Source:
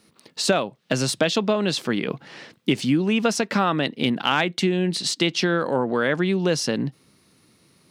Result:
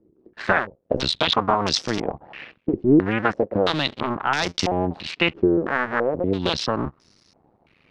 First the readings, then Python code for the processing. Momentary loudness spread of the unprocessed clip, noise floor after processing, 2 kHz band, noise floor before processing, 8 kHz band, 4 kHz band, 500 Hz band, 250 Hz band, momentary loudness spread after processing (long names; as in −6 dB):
6 LU, −63 dBFS, +1.0 dB, −60 dBFS, −7.0 dB, +0.5 dB, +0.5 dB, −0.5 dB, 9 LU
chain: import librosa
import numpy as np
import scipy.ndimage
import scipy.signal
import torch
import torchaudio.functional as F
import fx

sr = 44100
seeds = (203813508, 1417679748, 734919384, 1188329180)

y = fx.cycle_switch(x, sr, every=2, mode='muted')
y = fx.filter_held_lowpass(y, sr, hz=3.0, low_hz=360.0, high_hz=5500.0)